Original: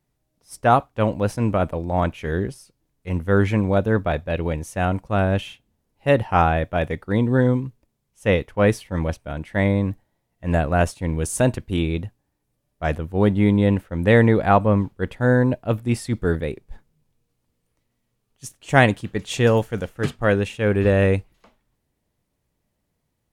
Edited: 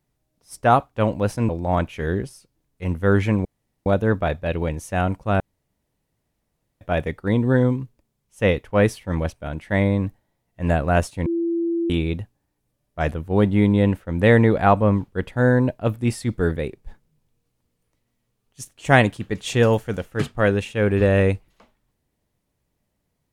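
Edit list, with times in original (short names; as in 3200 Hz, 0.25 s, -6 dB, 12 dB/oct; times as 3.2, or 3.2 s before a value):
1.49–1.74 cut
3.7 insert room tone 0.41 s
5.24–6.65 room tone
11.1–11.74 bleep 337 Hz -19.5 dBFS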